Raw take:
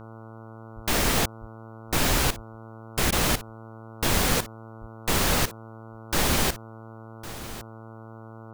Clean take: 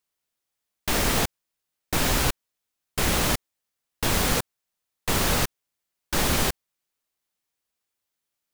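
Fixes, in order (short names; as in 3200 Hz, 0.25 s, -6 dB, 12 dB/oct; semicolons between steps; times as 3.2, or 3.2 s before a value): de-hum 112 Hz, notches 13; de-plosive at 0.75/1.4/1.9/2.35/4.8/7.49; interpolate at 3.11, 12 ms; inverse comb 1.107 s -15.5 dB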